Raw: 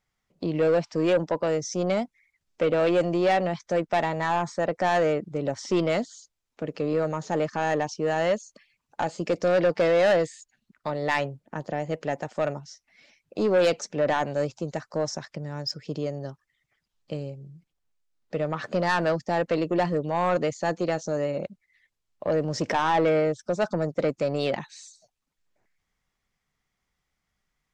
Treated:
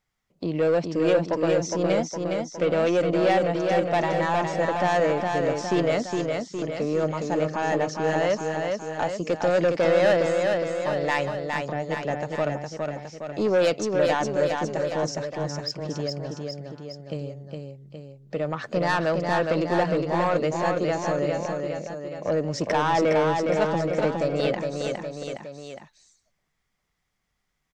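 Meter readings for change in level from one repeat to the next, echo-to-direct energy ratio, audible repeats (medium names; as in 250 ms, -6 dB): -4.5 dB, -2.5 dB, 3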